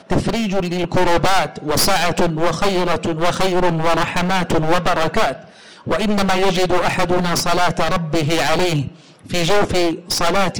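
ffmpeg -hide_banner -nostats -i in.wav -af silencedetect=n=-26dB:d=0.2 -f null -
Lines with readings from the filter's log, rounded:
silence_start: 5.36
silence_end: 5.87 | silence_duration: 0.51
silence_start: 8.88
silence_end: 9.30 | silence_duration: 0.42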